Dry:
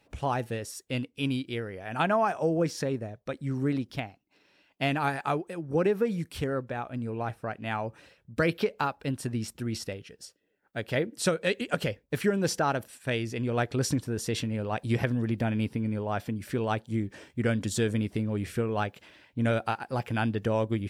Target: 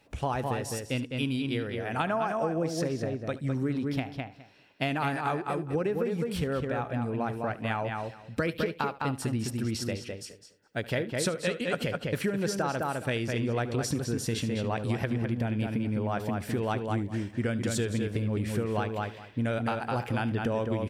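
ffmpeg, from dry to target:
-filter_complex "[0:a]asplit=2[s0][s1];[s1]adelay=207,lowpass=f=3500:p=1,volume=0.562,asplit=2[s2][s3];[s3]adelay=207,lowpass=f=3500:p=1,volume=0.16,asplit=2[s4][s5];[s5]adelay=207,lowpass=f=3500:p=1,volume=0.16[s6];[s2][s4][s6]amix=inputs=3:normalize=0[s7];[s0][s7]amix=inputs=2:normalize=0,acompressor=threshold=0.0398:ratio=6,asplit=2[s8][s9];[s9]aecho=0:1:75:0.126[s10];[s8][s10]amix=inputs=2:normalize=0,volume=1.33"

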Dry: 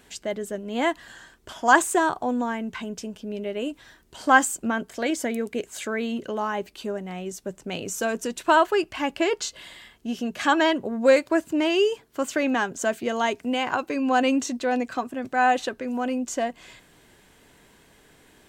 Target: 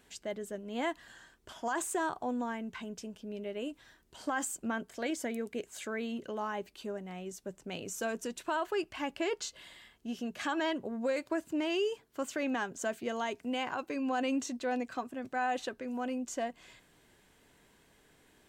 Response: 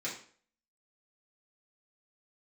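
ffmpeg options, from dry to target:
-af "alimiter=limit=0.178:level=0:latency=1:release=56,volume=0.355"

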